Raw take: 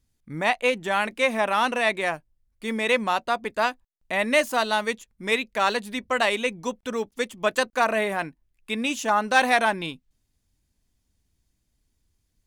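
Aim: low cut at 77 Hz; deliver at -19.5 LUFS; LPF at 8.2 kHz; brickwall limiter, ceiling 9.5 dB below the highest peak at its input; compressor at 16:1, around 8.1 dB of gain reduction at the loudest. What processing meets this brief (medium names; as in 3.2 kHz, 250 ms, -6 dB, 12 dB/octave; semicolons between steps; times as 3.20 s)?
high-pass 77 Hz; low-pass 8.2 kHz; compression 16:1, threshold -22 dBFS; trim +13 dB; peak limiter -8.5 dBFS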